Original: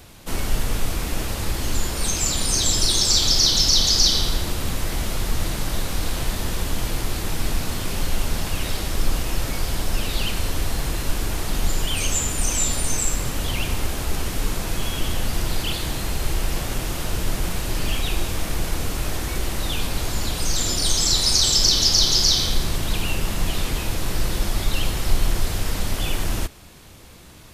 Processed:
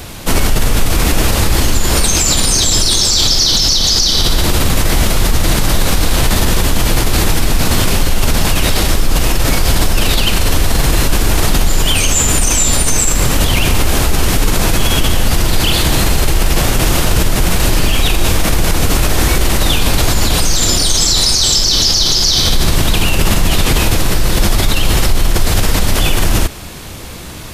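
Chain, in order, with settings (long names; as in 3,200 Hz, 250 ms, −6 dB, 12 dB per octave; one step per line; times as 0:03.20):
in parallel at +1 dB: compressor whose output falls as the input rises −24 dBFS
on the sum: boost into a limiter +9 dB
level −1 dB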